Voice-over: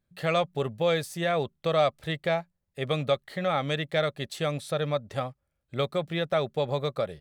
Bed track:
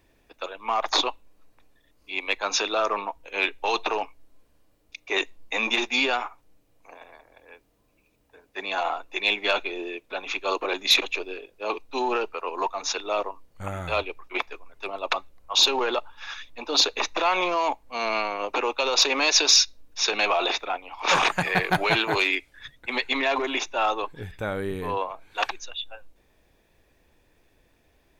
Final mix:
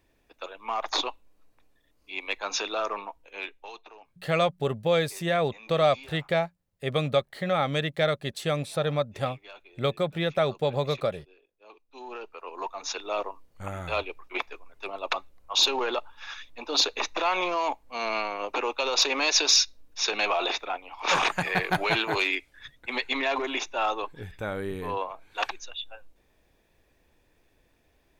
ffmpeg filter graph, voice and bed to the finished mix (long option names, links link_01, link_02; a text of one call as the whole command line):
ffmpeg -i stem1.wav -i stem2.wav -filter_complex "[0:a]adelay=4050,volume=1.5dB[link_01];[1:a]volume=15.5dB,afade=type=out:start_time=2.82:duration=1:silence=0.11885,afade=type=in:start_time=11.85:duration=1.4:silence=0.0944061[link_02];[link_01][link_02]amix=inputs=2:normalize=0" out.wav